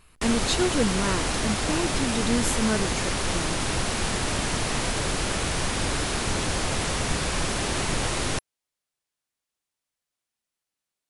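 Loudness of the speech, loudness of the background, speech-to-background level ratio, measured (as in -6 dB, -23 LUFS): -28.5 LUFS, -26.5 LUFS, -2.0 dB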